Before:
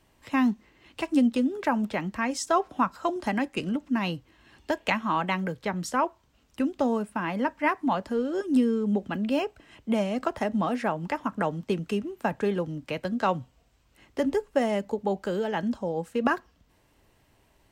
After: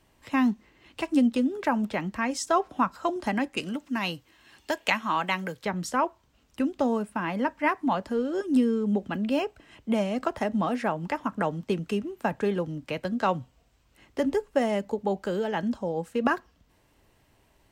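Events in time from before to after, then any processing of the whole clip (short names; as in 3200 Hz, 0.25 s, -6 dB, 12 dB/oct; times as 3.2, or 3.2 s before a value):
3.57–5.66 tilt +2 dB/oct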